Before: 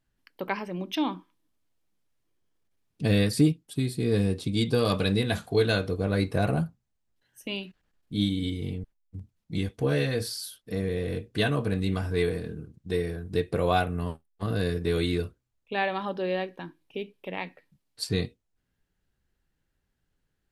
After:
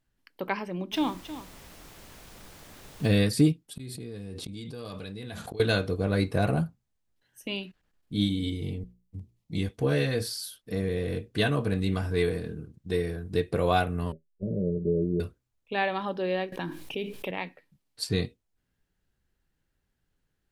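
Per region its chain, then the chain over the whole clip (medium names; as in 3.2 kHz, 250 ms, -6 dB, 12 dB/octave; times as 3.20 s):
0.91–3.06 s: added noise pink -49 dBFS + delay 315 ms -13 dB
3.76–5.60 s: inverted gate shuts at -28 dBFS, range -35 dB + level flattener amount 100%
8.27–9.62 s: peaking EQ 1.5 kHz -14.5 dB 0.27 oct + hum notches 60/120/180/240/300/360/420/480 Hz
14.12–15.20 s: rippled Chebyshev low-pass 620 Hz, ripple 3 dB + comb 5.3 ms, depth 55%
16.52–17.31 s: treble shelf 4.3 kHz +5 dB + level flattener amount 70%
whole clip: none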